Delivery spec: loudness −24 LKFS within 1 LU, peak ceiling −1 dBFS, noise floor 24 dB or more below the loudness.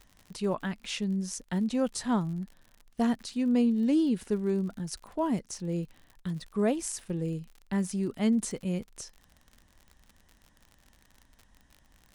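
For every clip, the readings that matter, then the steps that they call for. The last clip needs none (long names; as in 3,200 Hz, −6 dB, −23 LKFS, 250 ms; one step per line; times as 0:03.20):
crackle rate 55 per second; integrated loudness −30.5 LKFS; sample peak −15.0 dBFS; target loudness −24.0 LKFS
→ click removal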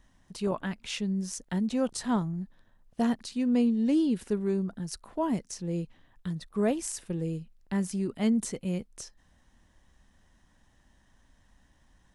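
crackle rate 0.082 per second; integrated loudness −30.5 LKFS; sample peak −15.0 dBFS; target loudness −24.0 LKFS
→ level +6.5 dB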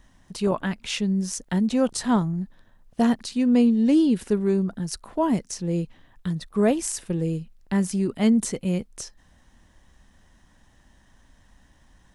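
integrated loudness −24.0 LKFS; sample peak −8.5 dBFS; background noise floor −59 dBFS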